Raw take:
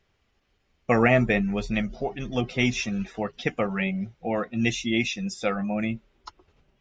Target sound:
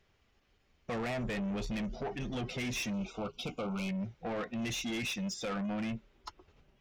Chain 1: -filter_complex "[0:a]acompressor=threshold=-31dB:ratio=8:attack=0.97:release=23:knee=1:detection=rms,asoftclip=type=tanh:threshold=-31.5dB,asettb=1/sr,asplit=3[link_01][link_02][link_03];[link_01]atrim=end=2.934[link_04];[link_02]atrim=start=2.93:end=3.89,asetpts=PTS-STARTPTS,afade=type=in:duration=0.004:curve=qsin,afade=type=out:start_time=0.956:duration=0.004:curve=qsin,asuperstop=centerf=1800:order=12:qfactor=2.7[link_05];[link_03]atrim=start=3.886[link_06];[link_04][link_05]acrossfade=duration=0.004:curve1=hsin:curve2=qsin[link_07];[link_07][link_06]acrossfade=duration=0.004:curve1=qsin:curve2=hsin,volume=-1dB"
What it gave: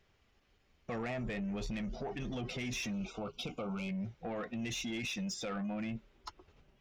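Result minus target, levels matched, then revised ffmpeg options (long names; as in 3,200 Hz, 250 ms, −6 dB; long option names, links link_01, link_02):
downward compressor: peak gain reduction +6.5 dB
-filter_complex "[0:a]acompressor=threshold=-23.5dB:ratio=8:attack=0.97:release=23:knee=1:detection=rms,asoftclip=type=tanh:threshold=-31.5dB,asettb=1/sr,asplit=3[link_01][link_02][link_03];[link_01]atrim=end=2.934[link_04];[link_02]atrim=start=2.93:end=3.89,asetpts=PTS-STARTPTS,afade=type=in:duration=0.004:curve=qsin,afade=type=out:start_time=0.956:duration=0.004:curve=qsin,asuperstop=centerf=1800:order=12:qfactor=2.7[link_05];[link_03]atrim=start=3.886[link_06];[link_04][link_05]acrossfade=duration=0.004:curve1=hsin:curve2=qsin[link_07];[link_07][link_06]acrossfade=duration=0.004:curve1=qsin:curve2=hsin,volume=-1dB"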